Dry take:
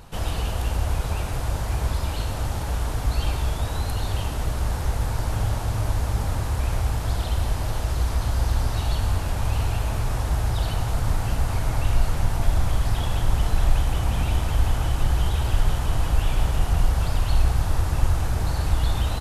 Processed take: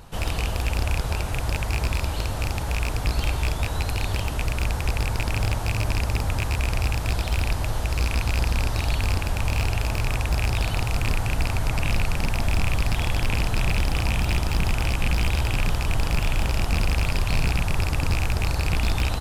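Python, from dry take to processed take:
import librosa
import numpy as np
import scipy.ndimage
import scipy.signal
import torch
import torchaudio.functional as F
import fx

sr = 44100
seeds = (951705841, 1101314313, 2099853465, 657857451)

y = fx.rattle_buzz(x, sr, strikes_db=-21.0, level_db=-13.0)
y = 10.0 ** (-15.0 / 20.0) * (np.abs((y / 10.0 ** (-15.0 / 20.0) + 3.0) % 4.0 - 2.0) - 1.0)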